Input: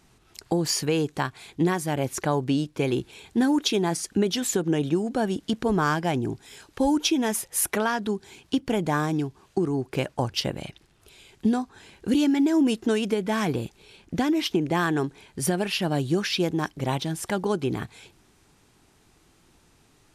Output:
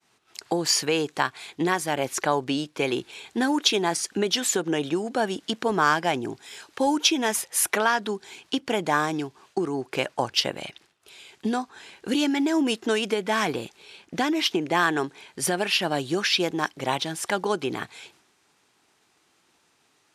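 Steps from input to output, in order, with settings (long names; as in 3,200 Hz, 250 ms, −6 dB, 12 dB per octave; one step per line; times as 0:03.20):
meter weighting curve A
downward expander −57 dBFS
low-shelf EQ 75 Hz +9 dB
level +4 dB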